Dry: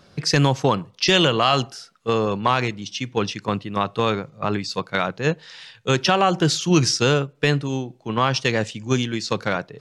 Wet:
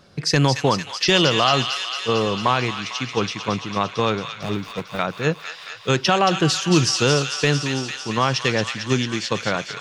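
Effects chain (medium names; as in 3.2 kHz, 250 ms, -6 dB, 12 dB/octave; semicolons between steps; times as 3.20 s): 4.29–4.99 s: median filter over 41 samples; feedback echo behind a high-pass 225 ms, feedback 76%, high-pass 1.6 kHz, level -5.5 dB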